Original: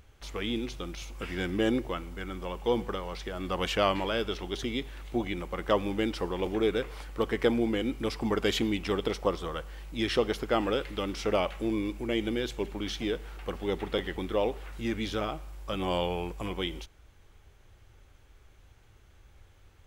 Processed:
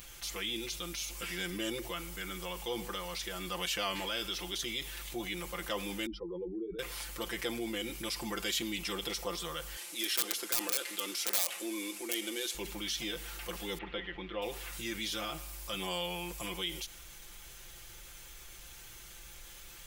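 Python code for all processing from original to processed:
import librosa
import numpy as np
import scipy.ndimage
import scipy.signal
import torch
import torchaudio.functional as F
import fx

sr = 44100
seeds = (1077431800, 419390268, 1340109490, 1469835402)

y = fx.chain(x, sr, fx.spec_expand(power=2.8),
    fx.hum_notches(base_hz=50, count=4), at=(6.06, 6.79))
y = fx.chain(y, sr, fx.cvsd(bps=64000),
    fx.highpass(hz=260.0, slope=24),
    fx.overflow_wrap(gain_db=19.0), at=(9.76, 12.55))
y = fx.chain(y, sr, fx.lowpass(hz=3000.0, slope=24),
    fx.upward_expand(threshold_db=-36.0, expansion=1.5), at=(13.78, 14.42))
y = F.preemphasis(torch.from_numpy(y), 0.9).numpy()
y = y + 0.91 * np.pad(y, (int(5.8 * sr / 1000.0), 0))[:len(y)]
y = fx.env_flatten(y, sr, amount_pct=50)
y = y * librosa.db_to_amplitude(-2.0)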